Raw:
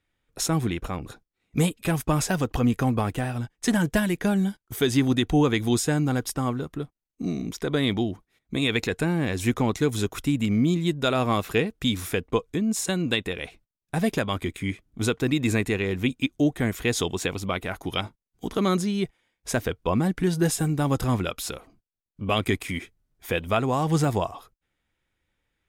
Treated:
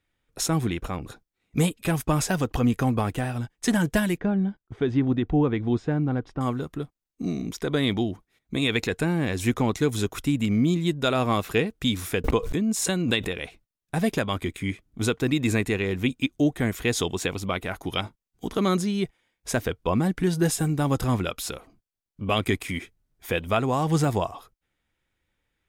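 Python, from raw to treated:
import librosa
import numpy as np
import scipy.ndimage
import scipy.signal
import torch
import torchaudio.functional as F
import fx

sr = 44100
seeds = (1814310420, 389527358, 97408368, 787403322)

y = fx.spacing_loss(x, sr, db_at_10k=41, at=(4.18, 6.41))
y = fx.pre_swell(y, sr, db_per_s=47.0, at=(12.24, 13.38))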